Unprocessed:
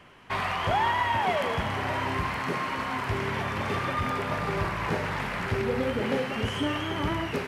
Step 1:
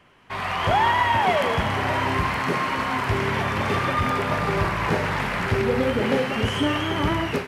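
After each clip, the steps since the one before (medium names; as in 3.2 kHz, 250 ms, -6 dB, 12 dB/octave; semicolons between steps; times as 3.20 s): level rider gain up to 9.5 dB; trim -3.5 dB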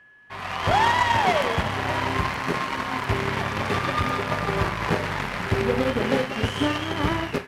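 whistle 1.7 kHz -42 dBFS; Chebyshev shaper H 7 -21 dB, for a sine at -9 dBFS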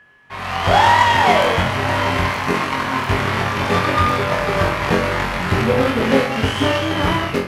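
flutter echo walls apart 3.8 m, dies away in 0.33 s; on a send at -12 dB: reverberation RT60 0.75 s, pre-delay 47 ms; on the sum: trim +4.5 dB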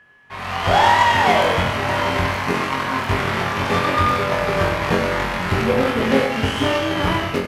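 delay 97 ms -9.5 dB; trim -2 dB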